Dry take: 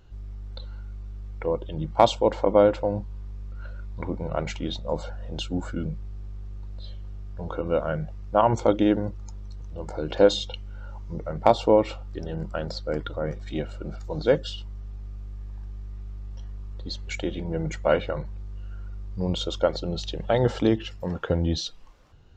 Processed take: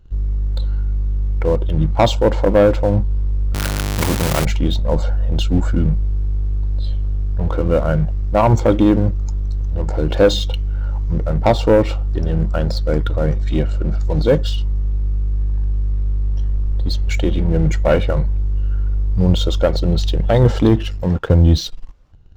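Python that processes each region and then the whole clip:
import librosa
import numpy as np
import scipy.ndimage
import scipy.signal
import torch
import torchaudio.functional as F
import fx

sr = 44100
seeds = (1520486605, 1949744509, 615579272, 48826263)

y = fx.chain(x, sr, fx.zero_step(step_db=-32.5),
    fx.highpass(hz=84.0, slope=12),
    fx.spectral_comp(ratio=2.0), at=(3.54, 4.45))
y = fx.low_shelf(y, sr, hz=290.0, db=5.5)
y = fx.leveller(y, sr, passes=2)
y = fx.low_shelf(y, sr, hz=88.0, db=10.0)
y = F.gain(torch.from_numpy(y), -1.5).numpy()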